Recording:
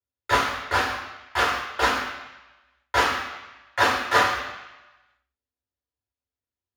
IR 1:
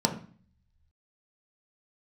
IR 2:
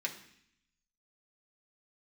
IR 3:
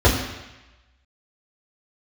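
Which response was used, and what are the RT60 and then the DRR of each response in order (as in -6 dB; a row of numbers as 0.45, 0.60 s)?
3; 0.45, 0.65, 1.0 s; 2.0, -1.0, -7.5 dB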